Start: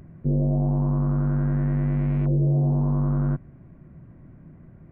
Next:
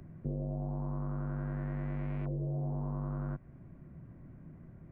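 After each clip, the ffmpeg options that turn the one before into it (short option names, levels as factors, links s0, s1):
-filter_complex "[0:a]acrossover=split=97|420[s0][s1][s2];[s0]acompressor=threshold=0.0141:ratio=4[s3];[s1]acompressor=threshold=0.0178:ratio=4[s4];[s2]acompressor=threshold=0.01:ratio=4[s5];[s3][s4][s5]amix=inputs=3:normalize=0,volume=0.596"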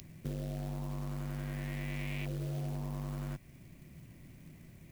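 -af "aexciter=amount=13.6:drive=5:freq=2200,acrusher=bits=4:mode=log:mix=0:aa=0.000001,volume=0.75"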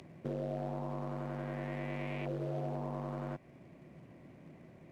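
-af "bandpass=f=610:t=q:w=1:csg=0,volume=2.82"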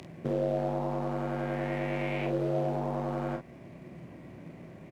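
-af "aecho=1:1:30|47:0.473|0.473,volume=2.11"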